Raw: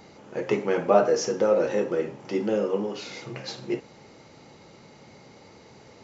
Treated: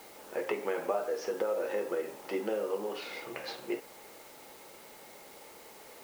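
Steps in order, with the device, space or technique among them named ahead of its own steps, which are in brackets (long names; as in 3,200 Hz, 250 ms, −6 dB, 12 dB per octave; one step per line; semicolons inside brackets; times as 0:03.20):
baby monitor (band-pass filter 420–3,200 Hz; downward compressor, threshold −29 dBFS, peak gain reduction 14.5 dB; white noise bed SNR 19 dB)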